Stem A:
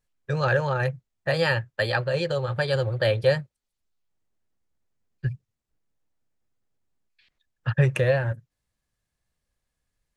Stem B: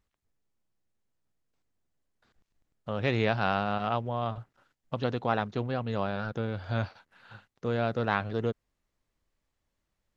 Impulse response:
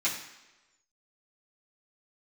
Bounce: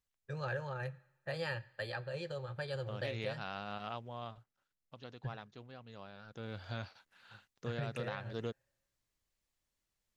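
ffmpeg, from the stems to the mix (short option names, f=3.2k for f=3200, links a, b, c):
-filter_complex "[0:a]volume=-16dB,asplit=2[a][b];[b]volume=-22dB[c];[1:a]highshelf=f=2.4k:g=11.5,volume=-2.5dB,afade=t=out:st=4.23:d=0.23:silence=0.421697,afade=t=in:st=6.27:d=0.28:silence=0.266073[d];[2:a]atrim=start_sample=2205[e];[c][e]afir=irnorm=-1:irlink=0[f];[a][d][f]amix=inputs=3:normalize=0,alimiter=level_in=2.5dB:limit=-24dB:level=0:latency=1:release=237,volume=-2.5dB"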